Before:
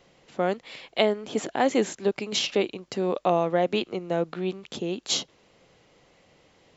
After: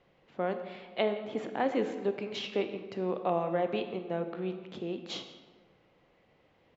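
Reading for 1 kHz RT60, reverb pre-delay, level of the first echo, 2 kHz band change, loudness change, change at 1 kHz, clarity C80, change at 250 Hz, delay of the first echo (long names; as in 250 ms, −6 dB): 1.3 s, 23 ms, −20.0 dB, −7.5 dB, −7.0 dB, −6.5 dB, 10.5 dB, −6.0 dB, 168 ms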